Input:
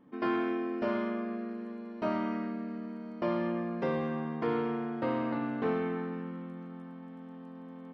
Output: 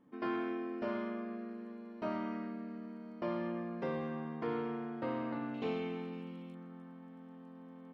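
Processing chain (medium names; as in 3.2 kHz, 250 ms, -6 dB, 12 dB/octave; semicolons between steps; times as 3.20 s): 5.54–6.55 s: FFT filter 770 Hz 0 dB, 1.7 kHz -8 dB, 2.5 kHz +10 dB; trim -6 dB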